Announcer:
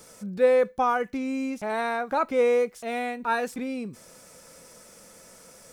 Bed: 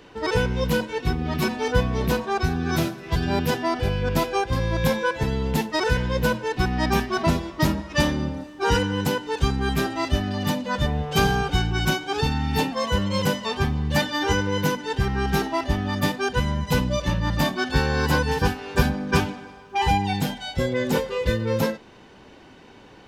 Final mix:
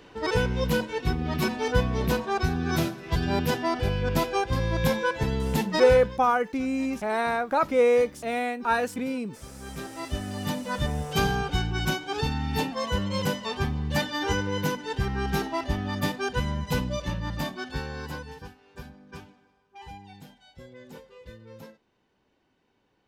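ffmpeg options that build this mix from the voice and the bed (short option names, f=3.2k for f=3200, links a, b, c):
-filter_complex "[0:a]adelay=5400,volume=1.5dB[a];[1:a]volume=16.5dB,afade=t=out:st=5.81:d=0.39:silence=0.0891251,afade=t=in:st=9.49:d=1.16:silence=0.112202,afade=t=out:st=16.57:d=1.92:silence=0.11885[b];[a][b]amix=inputs=2:normalize=0"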